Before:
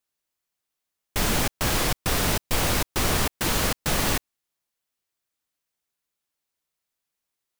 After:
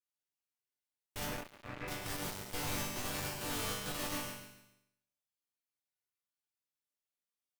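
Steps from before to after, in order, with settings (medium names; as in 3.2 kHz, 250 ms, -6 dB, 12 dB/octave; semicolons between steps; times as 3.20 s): 1.25–1.88 s: brick-wall FIR low-pass 2.7 kHz; chord resonator G2 major, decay 0.69 s; feedback delay 138 ms, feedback 35%, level -7 dB; one-sided clip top -40.5 dBFS; trim +3.5 dB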